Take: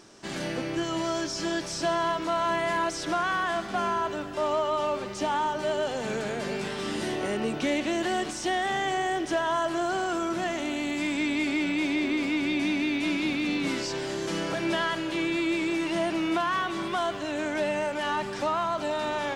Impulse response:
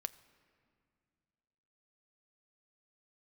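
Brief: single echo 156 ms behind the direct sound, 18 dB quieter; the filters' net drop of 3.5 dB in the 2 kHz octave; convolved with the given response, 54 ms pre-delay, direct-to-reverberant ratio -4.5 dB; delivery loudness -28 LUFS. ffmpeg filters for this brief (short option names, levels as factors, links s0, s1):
-filter_complex "[0:a]equalizer=f=2000:t=o:g=-4.5,aecho=1:1:156:0.126,asplit=2[s0][s1];[1:a]atrim=start_sample=2205,adelay=54[s2];[s1][s2]afir=irnorm=-1:irlink=0,volume=2.11[s3];[s0][s3]amix=inputs=2:normalize=0,volume=0.562"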